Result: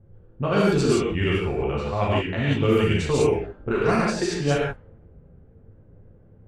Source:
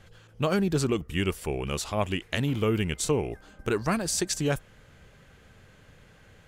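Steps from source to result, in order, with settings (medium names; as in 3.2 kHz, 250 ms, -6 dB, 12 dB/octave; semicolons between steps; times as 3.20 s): gated-style reverb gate 200 ms flat, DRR -5.5 dB; level-controlled noise filter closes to 370 Hz, open at -13.5 dBFS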